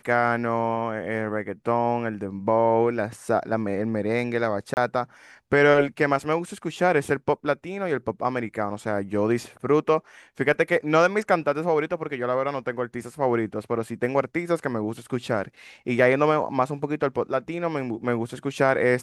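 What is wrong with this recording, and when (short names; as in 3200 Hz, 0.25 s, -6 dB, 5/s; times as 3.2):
4.74–4.77 gap 29 ms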